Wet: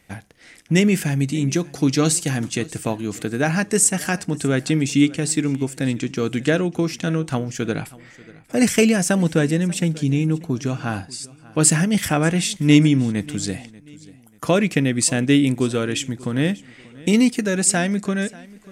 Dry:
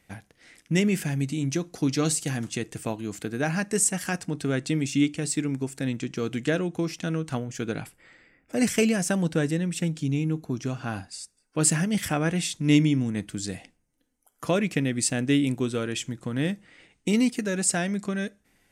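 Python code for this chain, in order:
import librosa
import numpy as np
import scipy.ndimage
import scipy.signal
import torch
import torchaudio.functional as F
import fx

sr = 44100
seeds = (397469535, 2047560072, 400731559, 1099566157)

y = fx.echo_feedback(x, sr, ms=588, feedback_pct=33, wet_db=-21.5)
y = y * 10.0 ** (6.5 / 20.0)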